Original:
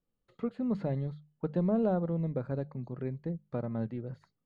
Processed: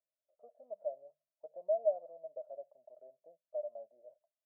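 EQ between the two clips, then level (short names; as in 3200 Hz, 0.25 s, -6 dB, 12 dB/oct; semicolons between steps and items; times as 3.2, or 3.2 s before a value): Butterworth band-pass 630 Hz, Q 7.9; +5.0 dB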